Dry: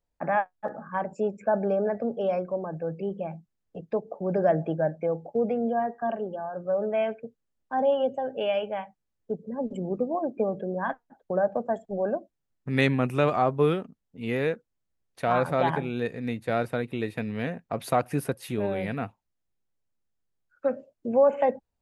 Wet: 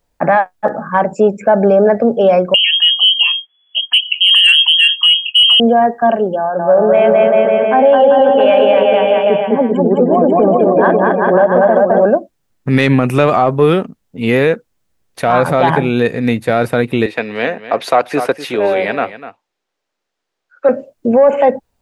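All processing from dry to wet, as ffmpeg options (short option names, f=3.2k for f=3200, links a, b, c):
-filter_complex "[0:a]asettb=1/sr,asplit=3[a][b][c];[a]atrim=end=2.544[d];[b]atrim=start=2.54:end=5.6,asetpts=PTS-STARTPTS,afade=t=in:d=0.004:c=qsin,afade=t=out:st=3.056:d=0.004:c=qsin,equalizer=f=920:t=o:w=0.87:g=-5,acontrast=23,lowpass=f=2.9k:t=q:w=0.5098,lowpass=f=2.9k:t=q:w=0.6013,lowpass=f=2.9k:t=q:w=0.9,lowpass=f=2.9k:t=q:w=2.563,afreqshift=-3400[e];[c]atrim=start=5.596[f];[d][e]acrossfade=d=0.004:c1=hsin:c2=qsin[g];[g][f]acrossfade=d=0.004:c1=qsin:c2=hsin,asettb=1/sr,asplit=3[h][i][j];[h]atrim=end=6.384[k];[i]atrim=start=6.38:end=12.05,asetpts=PTS-STARTPTS,afade=t=in:d=0.004:c=qsin,afade=t=out:st=5.666:d=0.004:c=qsin,highpass=160,lowpass=3.2k,aecho=1:1:210|388.5|540.2|669.2|778.8|872:0.794|0.631|0.501|0.398|0.316|0.251,atrim=end_sample=250047[l];[j]atrim=start=12.046[m];[k][l]acrossfade=d=0.004:c1=hsin:c2=qsin[n];[n][m]acrossfade=d=0.004:c1=qsin:c2=hsin,asettb=1/sr,asplit=3[o][p][q];[o]atrim=end=17.064[r];[p]atrim=start=17.06:end=20.69,asetpts=PTS-STARTPTS,afade=t=in:d=0.004:c=qsin,afade=t=out:st=3.626:d=0.004:c=qsin,acrossover=split=320 6300:gain=0.1 1 0.158[s][t][u];[s][t][u]amix=inputs=3:normalize=0,aecho=1:1:248:0.211,atrim=end_sample=160083[v];[q]atrim=start=20.686[w];[r][v]acrossfade=d=0.004:c1=hsin:c2=qsin[x];[x][w]acrossfade=d=0.004:c1=qsin:c2=hsin,lowshelf=f=150:g=-3.5,acontrast=83,alimiter=level_in=11.5dB:limit=-1dB:release=50:level=0:latency=1,volume=-1dB"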